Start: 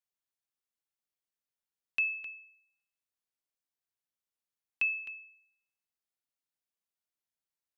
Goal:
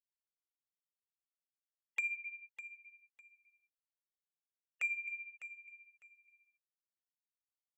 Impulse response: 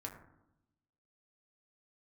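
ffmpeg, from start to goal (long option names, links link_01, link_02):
-filter_complex "[0:a]asettb=1/sr,asplit=3[link_01][link_02][link_03];[link_01]atrim=end=2.164[link_04];[link_02]atrim=start=2.16:end=4.82,asetpts=PTS-STARTPTS,afade=type=in:duration=0.004:curve=qsin,afade=type=out:start_time=2.656:duration=0.004:curve=qsin,lowpass=2200[link_05];[link_03]atrim=start=4.816[link_06];[link_04][link_05]acrossfade=duration=0.004:curve1=hsin:curve2=qsin[link_07];[link_07][link_06]acrossfade=duration=0.004:curve1=qsin:curve2=hsin,afftfilt=real='re*gte(hypot(re,im),0.00708)':imag='im*gte(hypot(re,im),0.00708)':win_size=1024:overlap=0.75,highpass=frequency=700:poles=1,aemphasis=mode=reproduction:type=75kf,acompressor=threshold=-54dB:ratio=2,asoftclip=type=tanh:threshold=-39.5dB,afreqshift=-230,flanger=delay=1.4:depth=3.5:regen=16:speed=0.83:shape=triangular,aecho=1:1:603|1206:0.224|0.047,volume=15dB"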